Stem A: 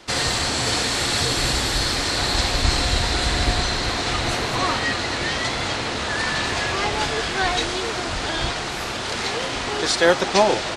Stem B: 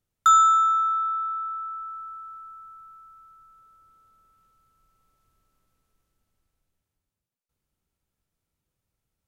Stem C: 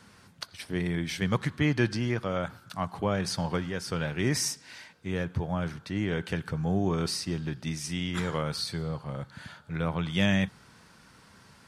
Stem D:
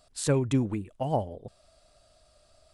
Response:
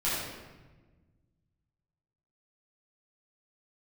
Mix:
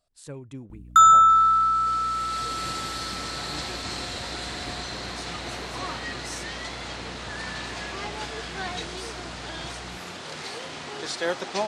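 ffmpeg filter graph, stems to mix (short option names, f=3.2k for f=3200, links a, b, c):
-filter_complex "[0:a]highpass=130,adelay=1200,volume=-11dB[a];[1:a]aeval=exprs='val(0)+0.00562*(sin(2*PI*60*n/s)+sin(2*PI*2*60*n/s)/2+sin(2*PI*3*60*n/s)/3+sin(2*PI*4*60*n/s)/4+sin(2*PI*5*60*n/s)/5)':c=same,adelay=700,volume=2.5dB,asplit=2[b][c];[c]volume=-18.5dB[d];[2:a]equalizer=f=7.4k:w=1.1:g=11.5,adelay=1900,volume=-17.5dB[e];[3:a]volume=-14.5dB,asplit=2[f][g];[g]apad=whole_len=527483[h];[a][h]sidechaincompress=threshold=-55dB:ratio=12:attack=9.7:release=1130[i];[d]aecho=0:1:139:1[j];[i][b][e][f][j]amix=inputs=5:normalize=0"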